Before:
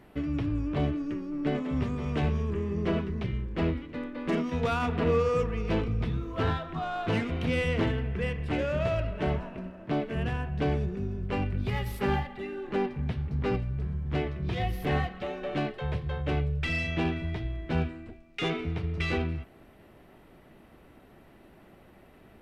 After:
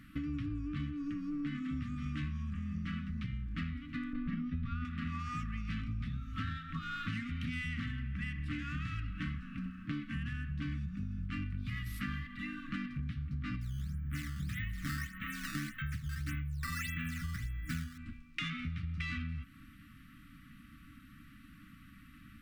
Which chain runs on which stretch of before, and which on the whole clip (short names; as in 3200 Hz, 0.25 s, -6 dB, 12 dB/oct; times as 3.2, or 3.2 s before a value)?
4.13–4.85 LPF 5100 Hz 24 dB/oct + tilt -3 dB/oct
13.61–17.98 bell 1300 Hz +6.5 dB 1.1 oct + fixed phaser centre 2100 Hz, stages 4 + decimation with a swept rate 8×, swing 160% 1.7 Hz
whole clip: FFT band-reject 310–1100 Hz; dynamic EQ 1900 Hz, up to +5 dB, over -53 dBFS, Q 5.8; compressor 6:1, threshold -37 dBFS; gain +1.5 dB